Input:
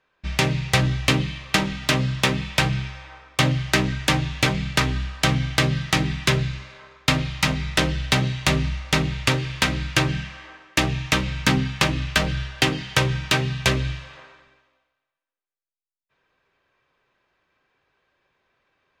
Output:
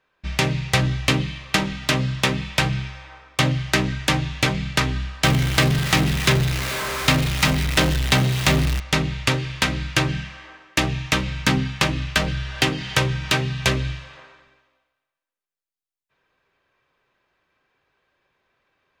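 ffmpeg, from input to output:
-filter_complex "[0:a]asettb=1/sr,asplit=3[s0][s1][s2];[s0]atrim=end=5.244[s3];[s1]atrim=start=5.24:end=8.8,asetpts=PTS-STARTPTS,afade=t=in:d=0.004:c=qsin,afade=t=out:st=3.556:d=0.004:c=qsin,aeval=exprs='val(0)+0.5*0.0891*sgn(val(0))':c=same[s4];[s2]atrim=start=8.796[s5];[s3][s4]acrossfade=d=0.004:c1=hsin:c2=qsin[s6];[s6][s5]acrossfade=d=0.004:c1=qsin:c2=hsin,asettb=1/sr,asplit=3[s7][s8][s9];[s7]atrim=end=12.284[s10];[s8]atrim=start=12.28:end=13.8,asetpts=PTS-STARTPTS,afade=t=in:d=0.004:c=qsin,afade=t=out:st=1.516:d=0.004:c=qsin,acompressor=mode=upward:threshold=0.0708:ratio=2.5:attack=3.2:release=140:knee=2.83:detection=peak[s11];[s9]atrim=start=13.796[s12];[s10][s11]acrossfade=d=0.004:c1=hsin:c2=qsin[s13];[s13][s12]acrossfade=d=0.004:c1=qsin:c2=hsin"

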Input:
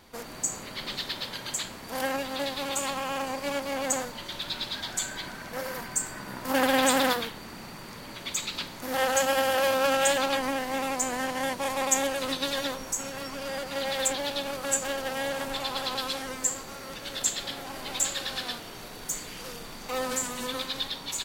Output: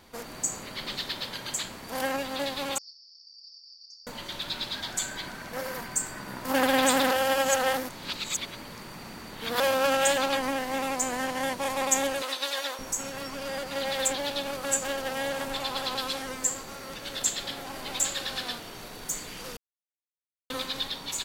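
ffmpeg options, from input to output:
-filter_complex "[0:a]asettb=1/sr,asplit=3[s0][s1][s2];[s0]atrim=end=2.784[s3];[s1]atrim=start=2.78:end=4.07,asetpts=PTS-STARTPTS,afade=t=in:d=0.004:c=qsin,afade=t=out:st=1.286:d=0.004:c=qsin,asuperpass=centerf=5000:order=8:qfactor=4.8[s4];[s2]atrim=start=4.066[s5];[s3][s4]acrossfade=d=0.004:c1=hsin:c2=qsin[s6];[s6][s5]acrossfade=d=0.004:c1=qsin:c2=hsin,asettb=1/sr,asplit=3[s7][s8][s9];[s7]atrim=end=12.224[s10];[s8]atrim=start=12.22:end=12.79,asetpts=PTS-STARTPTS,afade=t=in:d=0.004:c=qsin,afade=t=out:st=0.566:d=0.004:c=qsin,highpass=580[s11];[s9]atrim=start=12.786[s12];[s10][s11]acrossfade=d=0.004:c1=hsin:c2=qsin[s13];[s13][s12]acrossfade=d=0.004:c1=qsin:c2=hsin,asplit=5[s14][s15][s16][s17][s18];[s14]atrim=end=7.112[s19];[s15]atrim=start=7.108:end=9.602,asetpts=PTS-STARTPTS,areverse[s20];[s16]atrim=start=9.598:end=19.57,asetpts=PTS-STARTPTS,afade=t=out:st=9.968:d=0.004:c=hsin[s21];[s17]atrim=start=19.57:end=20.5,asetpts=PTS-STARTPTS,volume=0[s22];[s18]atrim=start=20.5,asetpts=PTS-STARTPTS,afade=t=in:d=0.004:c=hsin[s23];[s19][s20]acrossfade=d=0.004:c1=hsin:c2=hsin[s24];[s21][s22][s23]concat=n=3:v=0:a=1[s25];[s24][s25]acrossfade=d=0.004:c1=hsin:c2=hsin"

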